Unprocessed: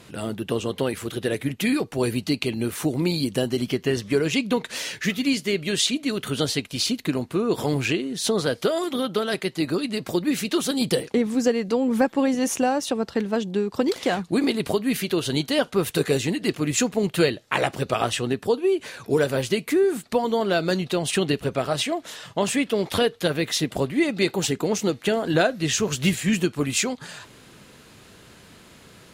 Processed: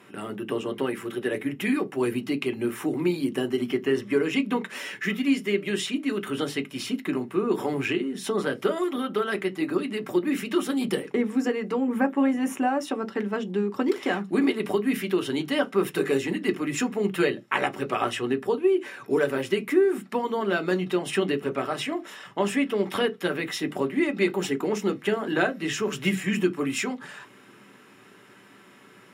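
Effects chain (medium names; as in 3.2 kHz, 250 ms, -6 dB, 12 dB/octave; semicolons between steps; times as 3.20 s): peaking EQ 5 kHz -6 dB 0.78 oct, from 11.81 s -13.5 dB, from 12.81 s -3.5 dB; reverberation RT60 0.15 s, pre-delay 3 ms, DRR 7 dB; trim -7.5 dB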